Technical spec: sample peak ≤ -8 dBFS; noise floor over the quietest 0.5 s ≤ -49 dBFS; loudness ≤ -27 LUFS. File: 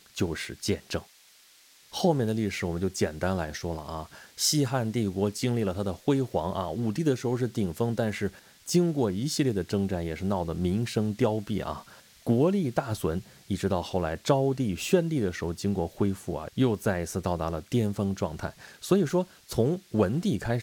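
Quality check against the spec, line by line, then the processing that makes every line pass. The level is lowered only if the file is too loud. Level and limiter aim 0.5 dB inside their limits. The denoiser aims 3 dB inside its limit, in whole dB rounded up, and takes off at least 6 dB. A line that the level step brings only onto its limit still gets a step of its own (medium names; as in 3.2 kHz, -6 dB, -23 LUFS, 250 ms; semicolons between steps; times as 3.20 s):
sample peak -9.5 dBFS: pass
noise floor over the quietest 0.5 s -57 dBFS: pass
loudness -28.5 LUFS: pass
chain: none needed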